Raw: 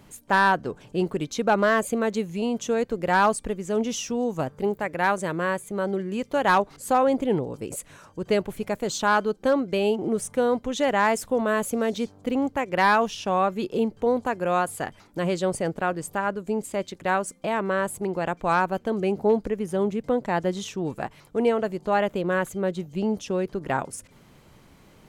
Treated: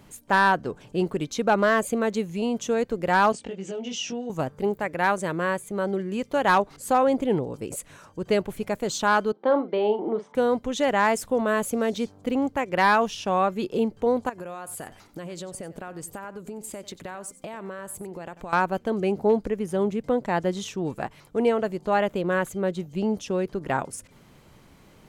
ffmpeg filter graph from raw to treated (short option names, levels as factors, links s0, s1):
-filter_complex "[0:a]asettb=1/sr,asplit=3[s0][s1][s2];[s0]atrim=end=3.324[s3];[s1]atrim=start=3.32:end=4.3,asetpts=PTS-STARTPTS,afade=t=in:d=0.004:c=qsin,afade=t=out:st=0.976:d=0.004:c=qsin,acompressor=threshold=0.0282:ratio=8:attack=3.2:release=140:knee=1:detection=peak,highpass=130,equalizer=f=730:t=q:w=4:g=4,equalizer=f=1100:t=q:w=4:g=-7,equalizer=f=2900:t=q:w=4:g=8,lowpass=f=6900:w=0.5412,lowpass=f=6900:w=1.3066,asplit=2[s4][s5];[s5]adelay=21,volume=0.75[s6];[s4][s6]amix=inputs=2:normalize=0,atrim=end_sample=43218[s7];[s2]atrim=start=4.296[s8];[s3][s7]acrossfade=d=0.004:c1=hsin:c2=qsin[s9];[s9][s8]acrossfade=d=0.004:c1=qsin:c2=hsin,asettb=1/sr,asplit=3[s10][s11][s12];[s10]atrim=end=9.324[s13];[s11]atrim=start=9.32:end=10.35,asetpts=PTS-STARTPTS,afade=t=in:d=0.004:c=qsin,afade=t=out:st=1.026:d=0.004:c=qsin,highpass=f=220:w=0.5412,highpass=f=220:w=1.3066,equalizer=f=240:t=q:w=4:g=-5,equalizer=f=910:t=q:w=4:g=8,equalizer=f=1600:t=q:w=4:g=-4,equalizer=f=2600:t=q:w=4:g=-10,lowpass=f=3300:w=0.5412,lowpass=f=3300:w=1.3066,asplit=2[s14][s15];[s15]adelay=43,volume=0.282[s16];[s14][s16]amix=inputs=2:normalize=0,atrim=end_sample=45423[s17];[s12]atrim=start=10.346[s18];[s13][s17]acrossfade=d=0.004:c1=hsin:c2=qsin[s19];[s19][s18]acrossfade=d=0.004:c1=qsin:c2=hsin,asettb=1/sr,asplit=3[s20][s21][s22];[s20]atrim=end=14.294[s23];[s21]atrim=start=14.29:end=18.53,asetpts=PTS-STARTPTS,afade=t=in:d=0.004:c=qsin,afade=t=out:st=4.236:d=0.004:c=qsin,highshelf=f=7700:g=7.5,acompressor=threshold=0.0251:ratio=12:attack=3.2:release=140:knee=1:detection=peak,aecho=1:1:93:0.158,atrim=end_sample=186984[s24];[s22]atrim=start=18.526[s25];[s23][s24]acrossfade=d=0.004:c1=hsin:c2=qsin[s26];[s26][s25]acrossfade=d=0.004:c1=qsin:c2=hsin"